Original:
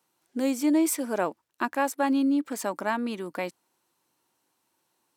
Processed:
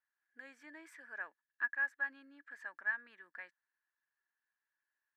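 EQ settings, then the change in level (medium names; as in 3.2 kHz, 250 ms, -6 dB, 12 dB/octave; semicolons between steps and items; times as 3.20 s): band-pass filter 1.7 kHz, Q 19; +4.0 dB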